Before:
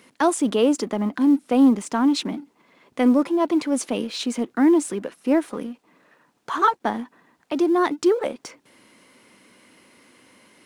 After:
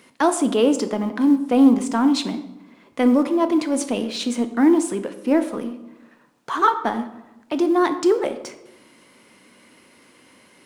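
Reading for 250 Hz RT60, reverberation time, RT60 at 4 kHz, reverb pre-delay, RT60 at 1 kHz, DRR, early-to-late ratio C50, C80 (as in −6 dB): 1.2 s, 0.95 s, 0.65 s, 12 ms, 0.90 s, 9.0 dB, 12.0 dB, 14.0 dB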